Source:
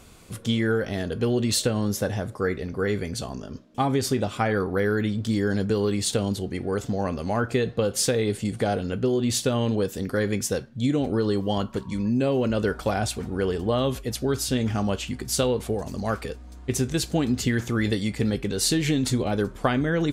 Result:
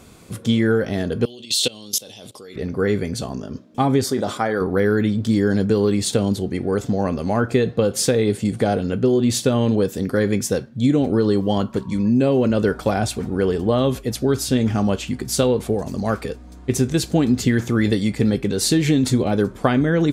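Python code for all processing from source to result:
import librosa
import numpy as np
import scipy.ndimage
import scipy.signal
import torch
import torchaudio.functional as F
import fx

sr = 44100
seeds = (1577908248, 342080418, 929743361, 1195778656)

y = fx.chain(x, sr, fx.highpass(hz=410.0, slope=6),
    fx.high_shelf_res(hz=2300.0, db=11.5, q=3.0),
    fx.level_steps(step_db=22), at=(1.25, 2.56))
y = fx.chain(y, sr, fx.highpass(hz=390.0, slope=6),
    fx.peak_eq(hz=2600.0, db=-12.0, octaves=0.33),
    fx.sustainer(db_per_s=94.0), at=(4.04, 4.61))
y = fx.highpass(y, sr, hz=180.0, slope=6)
y = fx.low_shelf(y, sr, hz=400.0, db=8.5)
y = fx.notch(y, sr, hz=2900.0, q=28.0)
y = y * librosa.db_to_amplitude(2.5)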